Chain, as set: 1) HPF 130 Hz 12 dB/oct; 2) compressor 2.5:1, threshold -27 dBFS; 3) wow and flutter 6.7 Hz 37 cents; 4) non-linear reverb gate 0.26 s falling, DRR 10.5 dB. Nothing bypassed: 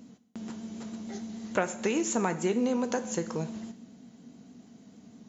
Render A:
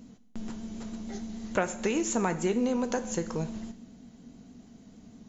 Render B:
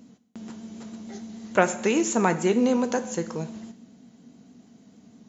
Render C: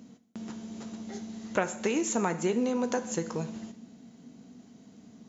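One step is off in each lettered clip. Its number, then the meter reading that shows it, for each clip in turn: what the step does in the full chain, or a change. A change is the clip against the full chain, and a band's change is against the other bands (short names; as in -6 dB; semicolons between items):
1, crest factor change -2.5 dB; 2, loudness change +7.0 LU; 3, momentary loudness spread change +2 LU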